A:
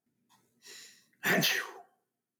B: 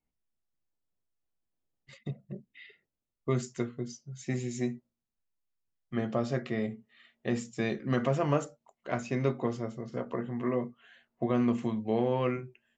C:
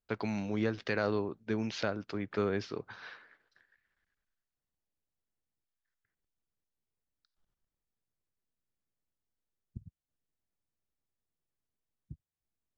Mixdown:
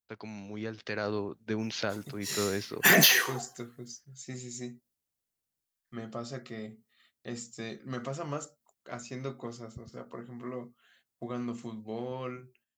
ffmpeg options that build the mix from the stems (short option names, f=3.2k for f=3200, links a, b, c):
-filter_complex "[0:a]adelay=1600,volume=1.5dB[a];[1:a]agate=range=-14dB:threshold=-60dB:ratio=16:detection=peak,equalizer=f=1.3k:w=6.8:g=7,aexciter=amount=1.8:drive=7.2:freq=3.9k,volume=-9dB,asplit=2[b][c];[2:a]highpass=51,volume=-8.5dB[d];[c]apad=whole_len=563340[e];[d][e]sidechaincompress=threshold=-45dB:ratio=8:attack=9.9:release=219[f];[a][f]amix=inputs=2:normalize=0,dynaudnorm=f=210:g=9:m=9dB,alimiter=limit=-12.5dB:level=0:latency=1:release=384,volume=0dB[g];[b][g]amix=inputs=2:normalize=0,highshelf=f=4.8k:g=9"